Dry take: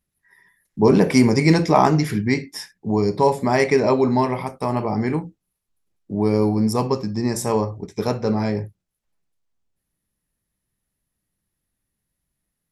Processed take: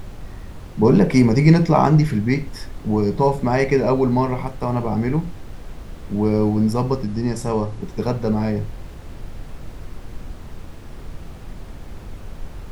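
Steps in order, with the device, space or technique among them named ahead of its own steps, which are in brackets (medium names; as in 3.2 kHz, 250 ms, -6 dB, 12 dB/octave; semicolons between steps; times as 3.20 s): car interior (peaking EQ 150 Hz +7 dB; treble shelf 4.6 kHz -7.5 dB; brown noise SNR 11 dB); 7.05–7.82 s: Chebyshev low-pass 11 kHz, order 4; trim -1 dB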